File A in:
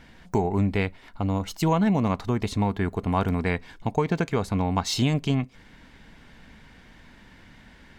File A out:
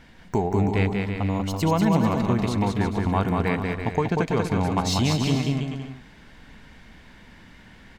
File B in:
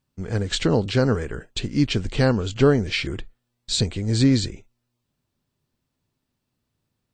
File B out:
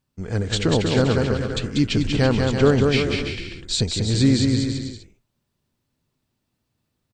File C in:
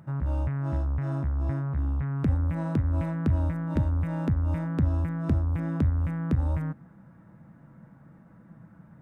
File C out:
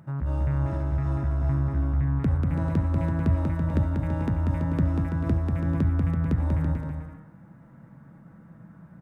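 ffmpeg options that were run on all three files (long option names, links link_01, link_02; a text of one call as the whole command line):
ffmpeg -i in.wav -af "aecho=1:1:190|332.5|439.4|519.5|579.6:0.631|0.398|0.251|0.158|0.1" out.wav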